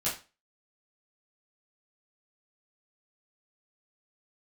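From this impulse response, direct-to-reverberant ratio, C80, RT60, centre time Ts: -10.5 dB, 13.5 dB, 0.30 s, 31 ms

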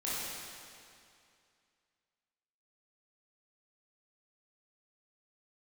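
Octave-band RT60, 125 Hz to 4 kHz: 2.4, 2.4, 2.4, 2.4, 2.3, 2.2 s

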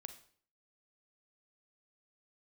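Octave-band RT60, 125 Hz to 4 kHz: 0.60, 0.55, 0.55, 0.50, 0.50, 0.45 s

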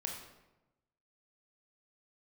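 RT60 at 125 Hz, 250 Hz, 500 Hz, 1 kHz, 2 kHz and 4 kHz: 1.2, 1.1, 1.1, 0.95, 0.80, 0.65 s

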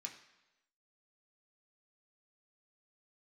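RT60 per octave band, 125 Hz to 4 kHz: 0.90, 0.90, 1.0, 1.0, 1.0, 0.95 s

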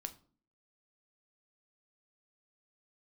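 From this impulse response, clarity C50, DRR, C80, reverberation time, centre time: 16.5 dB, 8.0 dB, 21.0 dB, 0.45 s, 5 ms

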